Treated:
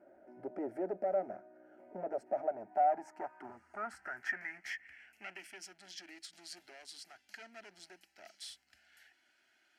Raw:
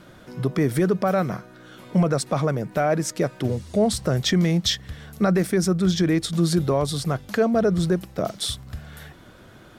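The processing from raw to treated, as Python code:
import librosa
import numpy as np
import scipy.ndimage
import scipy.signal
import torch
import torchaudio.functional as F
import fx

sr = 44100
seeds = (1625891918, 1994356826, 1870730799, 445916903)

y = fx.clip_asym(x, sr, top_db=-24.0, bottom_db=-16.5)
y = fx.filter_sweep_bandpass(y, sr, from_hz=550.0, to_hz=3700.0, start_s=2.22, end_s=5.8, q=4.3)
y = fx.fixed_phaser(y, sr, hz=740.0, stages=8)
y = y * 10.0 ** (1.0 / 20.0)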